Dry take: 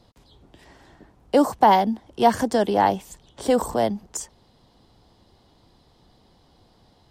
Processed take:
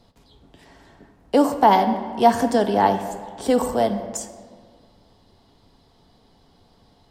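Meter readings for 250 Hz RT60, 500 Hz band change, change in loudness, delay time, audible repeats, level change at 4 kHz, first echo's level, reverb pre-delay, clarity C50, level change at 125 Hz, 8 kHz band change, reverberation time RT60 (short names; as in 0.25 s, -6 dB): 2.1 s, +1.5 dB, +1.5 dB, none, none, +0.5 dB, none, 4 ms, 9.5 dB, +1.5 dB, +0.5 dB, 1.8 s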